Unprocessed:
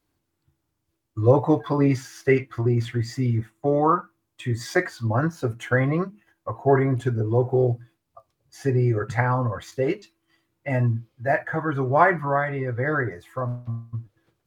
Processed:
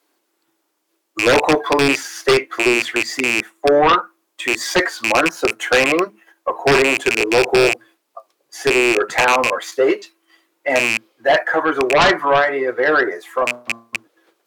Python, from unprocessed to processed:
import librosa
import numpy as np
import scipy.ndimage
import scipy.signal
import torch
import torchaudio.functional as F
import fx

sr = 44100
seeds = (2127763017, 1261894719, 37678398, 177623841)

p1 = fx.rattle_buzz(x, sr, strikes_db=-23.0, level_db=-12.0)
p2 = scipy.signal.sosfilt(scipy.signal.butter(4, 340.0, 'highpass', fs=sr, output='sos'), p1)
p3 = fx.fold_sine(p2, sr, drive_db=14, ceiling_db=-3.0)
p4 = p2 + (p3 * 10.0 ** (-3.0 / 20.0))
y = p4 * 10.0 ** (-4.5 / 20.0)